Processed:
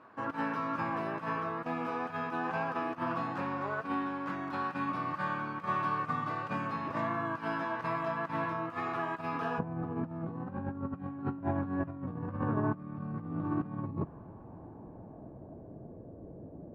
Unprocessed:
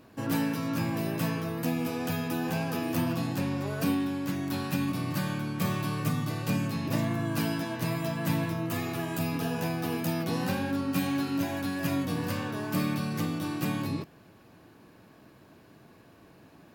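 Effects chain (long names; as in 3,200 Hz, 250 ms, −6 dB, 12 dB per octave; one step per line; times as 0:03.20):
spectral tilt +4 dB per octave, from 0:09.58 −3 dB per octave
compressor whose output falls as the input rises −29 dBFS, ratio −0.5
low-pass filter sweep 1,200 Hz → 570 Hz, 0:13.62–0:16.07
level −3.5 dB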